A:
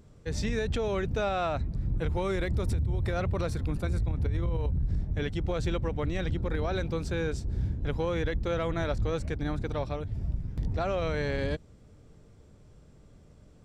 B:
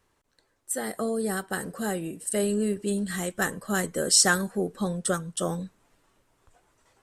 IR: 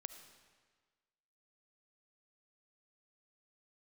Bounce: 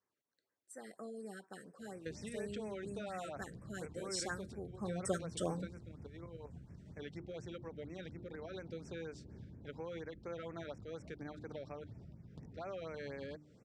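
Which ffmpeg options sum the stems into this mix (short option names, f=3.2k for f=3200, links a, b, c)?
-filter_complex "[0:a]bandreject=f=50:t=h:w=6,bandreject=f=100:t=h:w=6,bandreject=f=150:t=h:w=6,bandreject=f=200:t=h:w=6,bandreject=f=250:t=h:w=6,bandreject=f=300:t=h:w=6,bandreject=f=350:t=h:w=6,acompressor=threshold=-37dB:ratio=10,adelay=1800,volume=-3dB[a];[1:a]volume=-8dB,afade=t=in:st=4.75:d=0.25:silence=0.298538[b];[a][b]amix=inputs=2:normalize=0,highpass=150,lowpass=6.5k,afftfilt=real='re*(1-between(b*sr/1024,850*pow(3800/850,0.5+0.5*sin(2*PI*4.2*pts/sr))/1.41,850*pow(3800/850,0.5+0.5*sin(2*PI*4.2*pts/sr))*1.41))':imag='im*(1-between(b*sr/1024,850*pow(3800/850,0.5+0.5*sin(2*PI*4.2*pts/sr))/1.41,850*pow(3800/850,0.5+0.5*sin(2*PI*4.2*pts/sr))*1.41))':win_size=1024:overlap=0.75"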